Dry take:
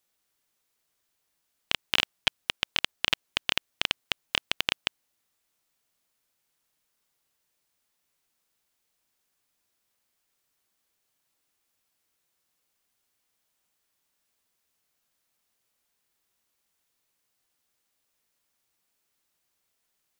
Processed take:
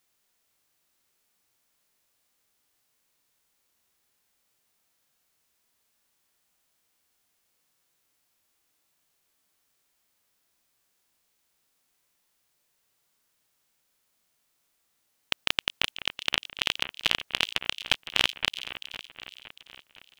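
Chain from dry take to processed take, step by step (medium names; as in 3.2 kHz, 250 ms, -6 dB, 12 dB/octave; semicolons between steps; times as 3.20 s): reverse the whole clip; two-band feedback delay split 2.8 kHz, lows 512 ms, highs 376 ms, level -13 dB; harmonic-percussive split harmonic +6 dB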